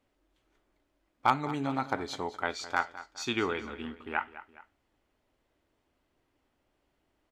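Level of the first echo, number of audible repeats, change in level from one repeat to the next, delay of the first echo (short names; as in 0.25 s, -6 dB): -15.5 dB, 2, -7.0 dB, 0.208 s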